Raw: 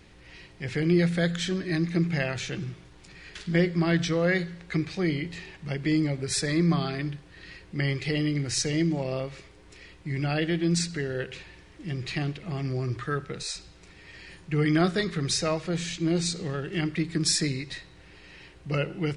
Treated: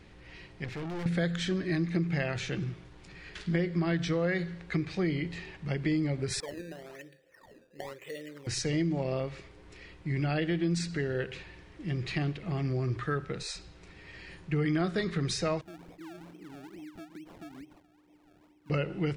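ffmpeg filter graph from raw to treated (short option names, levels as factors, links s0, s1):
-filter_complex "[0:a]asettb=1/sr,asplit=3[s0][s1][s2];[s0]atrim=end=0.644[s3];[s1]atrim=start=0.64:end=1.06,asetpts=PTS-STARTPTS,afade=t=in:d=0.004:c=qsin,afade=t=out:st=0.416:d=0.004:c=qsin,lowpass=9100,aeval=exprs='(tanh(56.2*val(0)+0.4)-tanh(0.4))/56.2':c=same[s4];[s2]atrim=start=1.056[s5];[s3][s4]acrossfade=d=0.004:c1=hsin:c2=qsin[s6];[s6][s5]acrossfade=d=0.004:c1=qsin:c2=hsin,asettb=1/sr,asplit=3[s7][s8][s9];[s7]atrim=end=6.404[s10];[s8]atrim=start=6.4:end=8.47,asetpts=PTS-STARTPTS,afade=t=in:d=0.004:c=qsin,afade=t=out:st=2.066:d=0.004:c=qsin,asplit=3[s11][s12][s13];[s11]bandpass=f=530:t=q:w=8,volume=1[s14];[s12]bandpass=f=1840:t=q:w=8,volume=0.501[s15];[s13]bandpass=f=2480:t=q:w=8,volume=0.355[s16];[s14][s15][s16]amix=inputs=3:normalize=0,acrusher=samples=14:mix=1:aa=0.000001:lfo=1:lforange=14:lforate=1[s17];[s9]atrim=start=8.466[s18];[s10][s17]acrossfade=d=0.004:c1=hsin:c2=qsin[s19];[s19][s18]acrossfade=d=0.004:c1=qsin:c2=hsin,asettb=1/sr,asplit=3[s20][s21][s22];[s20]atrim=end=15.614[s23];[s21]atrim=start=15.61:end=18.7,asetpts=PTS-STARTPTS,afade=t=in:d=0.004:c=qsin,afade=t=out:st=3.086:d=0.004:c=qsin,asplit=3[s24][s25][s26];[s24]bandpass=f=300:t=q:w=8,volume=1[s27];[s25]bandpass=f=870:t=q:w=8,volume=0.501[s28];[s26]bandpass=f=2240:t=q:w=8,volume=0.355[s29];[s27][s28][s29]amix=inputs=3:normalize=0,acompressor=threshold=0.00794:ratio=10:attack=3.2:release=140:knee=1:detection=peak,acrusher=samples=30:mix=1:aa=0.000001:lfo=1:lforange=30:lforate=2.3[s30];[s22]atrim=start=18.696[s31];[s23][s30]acrossfade=d=0.004:c1=hsin:c2=qsin[s32];[s32][s31]acrossfade=d=0.004:c1=qsin:c2=hsin,acompressor=threshold=0.0562:ratio=5,highshelf=f=4300:g=-8.5"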